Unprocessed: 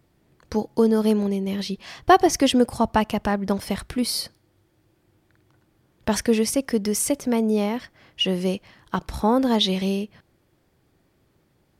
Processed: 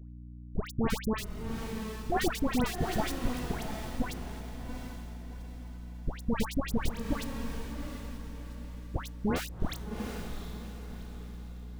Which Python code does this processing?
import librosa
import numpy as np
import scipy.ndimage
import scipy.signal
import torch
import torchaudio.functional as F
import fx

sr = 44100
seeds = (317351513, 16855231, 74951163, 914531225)

p1 = fx.peak_eq(x, sr, hz=8300.0, db=-6.0, octaves=2.9)
p2 = fx.schmitt(p1, sr, flips_db=-16.0)
p3 = fx.add_hum(p2, sr, base_hz=60, snr_db=10)
p4 = fx.dispersion(p3, sr, late='highs', ms=121.0, hz=1400.0)
p5 = p4 + fx.echo_diffused(p4, sr, ms=742, feedback_pct=41, wet_db=-6.0, dry=0)
y = p5 * 10.0 ** (-1.5 / 20.0)